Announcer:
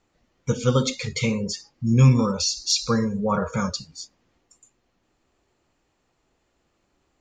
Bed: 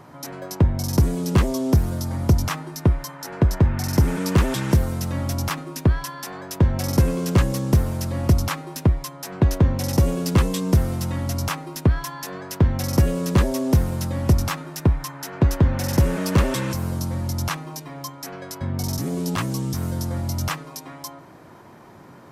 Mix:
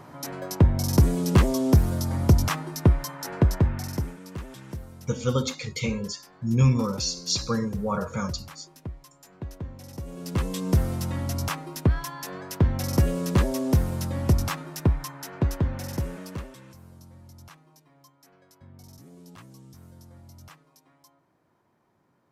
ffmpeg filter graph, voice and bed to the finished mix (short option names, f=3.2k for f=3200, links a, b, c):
-filter_complex "[0:a]adelay=4600,volume=-4.5dB[a];[1:a]volume=15dB,afade=t=out:st=3.26:d=0.91:silence=0.11885,afade=t=in:st=10.05:d=0.73:silence=0.16788,afade=t=out:st=14.92:d=1.62:silence=0.105925[b];[a][b]amix=inputs=2:normalize=0"